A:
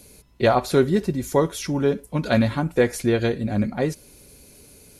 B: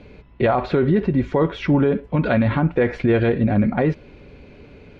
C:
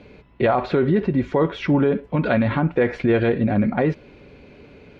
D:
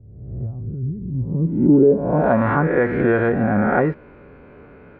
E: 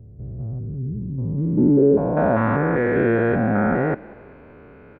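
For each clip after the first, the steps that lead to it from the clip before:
low-pass 2.8 kHz 24 dB/octave; loudness maximiser +17 dB; trim -8.5 dB
bass shelf 81 Hz -9.5 dB
reverse spectral sustain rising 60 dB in 1.02 s; low-pass sweep 100 Hz -> 1.4 kHz, 1.09–2.48 s; trim -1.5 dB
spectrogram pixelated in time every 200 ms; frequency-shifting echo 195 ms, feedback 47%, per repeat +54 Hz, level -22 dB

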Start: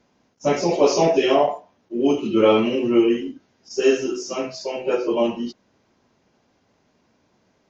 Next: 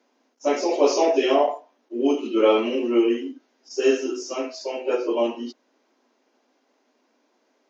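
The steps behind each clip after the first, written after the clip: elliptic high-pass 250 Hz, stop band 40 dB; trim -1.5 dB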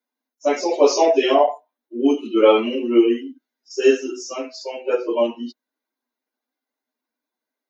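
expander on every frequency bin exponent 1.5; trim +6 dB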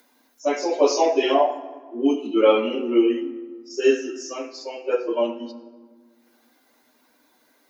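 upward compressor, threshold -37 dBFS; on a send at -10 dB: reverberation RT60 1.6 s, pre-delay 5 ms; on the sum: trim -3 dB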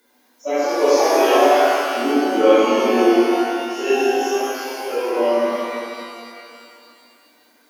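coarse spectral quantiser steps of 15 dB; pitch-shifted reverb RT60 2.4 s, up +12 st, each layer -8 dB, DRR -10.5 dB; trim -6 dB

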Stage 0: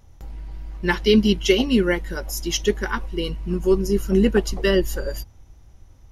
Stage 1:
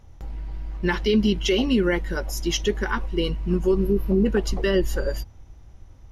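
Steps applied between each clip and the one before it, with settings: spectral replace 3.83–4.23 s, 1.2–11 kHz before; treble shelf 6.3 kHz -9.5 dB; peak limiter -14 dBFS, peak gain reduction 9 dB; trim +2 dB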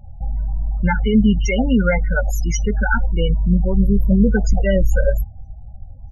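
high-order bell 3.7 kHz -8.5 dB 1.1 oct; comb 1.4 ms, depth 86%; loudest bins only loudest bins 16; trim +5.5 dB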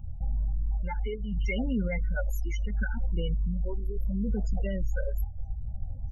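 peak limiter -11 dBFS, peak gain reduction 7 dB; reverse; compression 6:1, threshold -26 dBFS, peak gain reduction 12 dB; reverse; phase shifter stages 8, 0.72 Hz, lowest notch 170–1900 Hz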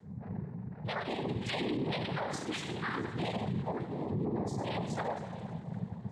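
two-slope reverb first 0.59 s, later 3.9 s, from -18 dB, DRR -5 dB; noise-vocoded speech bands 6; peak limiter -26 dBFS, peak gain reduction 15.5 dB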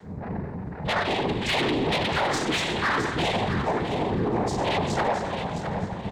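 octave divider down 1 oct, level -2 dB; overdrive pedal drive 16 dB, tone 5 kHz, clips at -23 dBFS; feedback delay 663 ms, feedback 29%, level -9 dB; trim +6.5 dB

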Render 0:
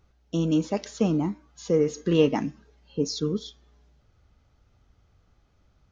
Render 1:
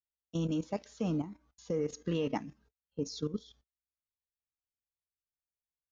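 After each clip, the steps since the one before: gate -50 dBFS, range -36 dB; peaking EQ 370 Hz -6.5 dB 0.25 oct; level held to a coarse grid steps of 13 dB; trim -5 dB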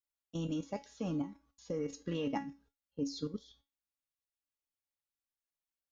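feedback comb 280 Hz, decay 0.25 s, harmonics all, mix 80%; trim +7.5 dB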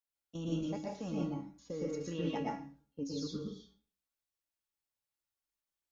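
reverberation RT60 0.40 s, pre-delay 108 ms, DRR -3 dB; trim -4 dB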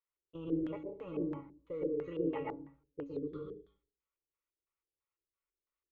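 static phaser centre 1.1 kHz, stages 8; LFO low-pass square 3 Hz 390–1700 Hz; wow and flutter 20 cents; trim +1 dB

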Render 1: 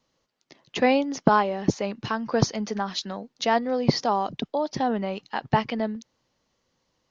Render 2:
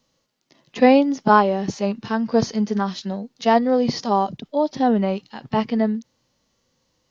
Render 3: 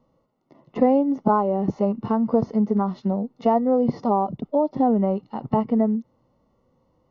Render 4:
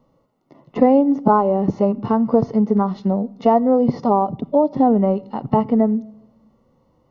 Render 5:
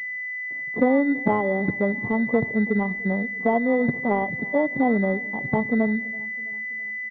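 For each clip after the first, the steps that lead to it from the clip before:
treble shelf 3.1 kHz +8.5 dB; harmonic-percussive split percussive -15 dB; bass shelf 480 Hz +6 dB; trim +4 dB
compression 2.5:1, threshold -26 dBFS, peak gain reduction 12 dB; Savitzky-Golay filter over 65 samples; trim +6.5 dB
simulated room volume 3600 m³, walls furnished, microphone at 0.31 m; trim +4.5 dB
feedback delay 329 ms, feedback 52%, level -22.5 dB; class-D stage that switches slowly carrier 2 kHz; trim -5.5 dB

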